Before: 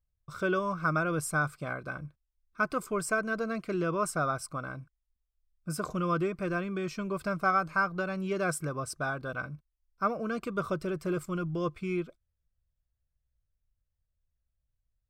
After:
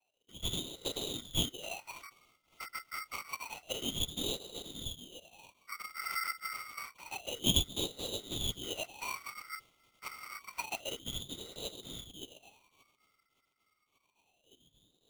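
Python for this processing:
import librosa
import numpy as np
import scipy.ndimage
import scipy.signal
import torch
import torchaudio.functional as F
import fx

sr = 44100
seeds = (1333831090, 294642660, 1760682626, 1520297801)

p1 = fx.wiener(x, sr, points=15)
p2 = fx.high_shelf(p1, sr, hz=4400.0, db=-7.0)
p3 = p2 + 0.68 * np.pad(p2, (int(7.4 * sr / 1000.0), 0))[:len(p2)]
p4 = fx.dmg_crackle(p3, sr, seeds[0], per_s=450.0, level_db=-49.0)
p5 = fx.noise_vocoder(p4, sr, seeds[1], bands=3)
p6 = fx.peak_eq(p5, sr, hz=430.0, db=-4.0, octaves=0.77)
p7 = p6 + fx.echo_wet_highpass(p6, sr, ms=575, feedback_pct=62, hz=1600.0, wet_db=-7, dry=0)
p8 = fx.wah_lfo(p7, sr, hz=0.28, low_hz=360.0, high_hz=2200.0, q=12.0)
p9 = p8 * np.sign(np.sin(2.0 * np.pi * 1700.0 * np.arange(len(p8)) / sr))
y = p9 * 10.0 ** (6.0 / 20.0)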